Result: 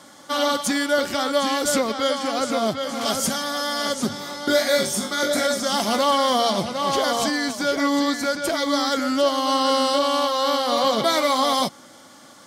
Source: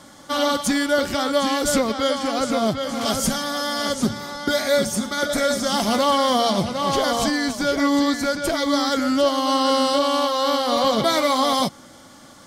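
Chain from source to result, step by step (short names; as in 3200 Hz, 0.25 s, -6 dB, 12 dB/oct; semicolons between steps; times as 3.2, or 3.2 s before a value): HPF 260 Hz 6 dB/oct; 4.09–5.47 flutter echo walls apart 3.5 m, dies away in 0.27 s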